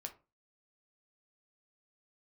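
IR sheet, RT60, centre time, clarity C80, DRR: 0.30 s, 8 ms, 21.0 dB, 3.5 dB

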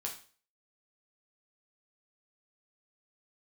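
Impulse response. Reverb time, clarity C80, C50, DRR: 0.40 s, 14.0 dB, 8.5 dB, -1.0 dB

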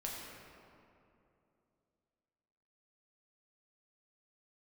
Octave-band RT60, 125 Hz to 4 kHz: 3.2, 3.2, 3.0, 2.5, 2.0, 1.4 s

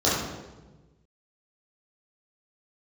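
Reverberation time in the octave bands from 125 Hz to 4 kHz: 1.8, 1.5, 1.3, 1.1, 0.90, 0.85 s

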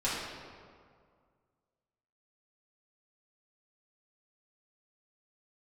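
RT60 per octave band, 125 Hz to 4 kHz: 2.3, 2.1, 2.1, 2.0, 1.5, 1.2 s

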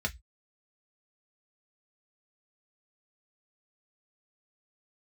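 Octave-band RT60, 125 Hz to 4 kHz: 0.30, 0.15, 0.10, 0.15, 0.15, 0.20 s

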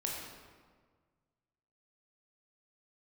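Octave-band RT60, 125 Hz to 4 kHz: 2.1, 1.8, 1.7, 1.6, 1.3, 1.0 s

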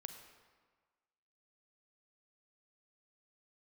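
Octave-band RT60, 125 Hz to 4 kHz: 1.4, 1.4, 1.4, 1.6, 1.3, 1.1 s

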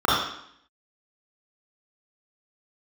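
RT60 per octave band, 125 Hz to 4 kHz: 0.60, 0.80, 0.65, 0.70, 0.70, 0.70 s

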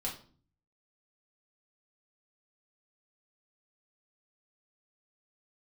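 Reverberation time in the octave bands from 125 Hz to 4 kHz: 0.85, 0.65, 0.50, 0.40, 0.35, 0.35 s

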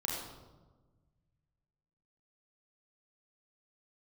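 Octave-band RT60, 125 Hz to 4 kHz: 2.5, 1.8, 1.4, 1.2, 0.75, 0.75 s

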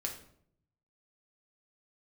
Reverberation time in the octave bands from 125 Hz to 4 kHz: 1.2, 0.85, 0.70, 0.60, 0.50, 0.45 s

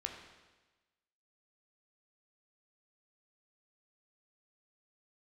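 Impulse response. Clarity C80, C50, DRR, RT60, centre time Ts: 7.0 dB, 5.5 dB, 2.0 dB, 1.2 s, 36 ms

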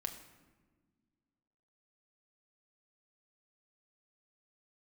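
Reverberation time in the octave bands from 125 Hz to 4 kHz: 2.2, 2.4, 1.6, 1.2, 1.1, 0.80 s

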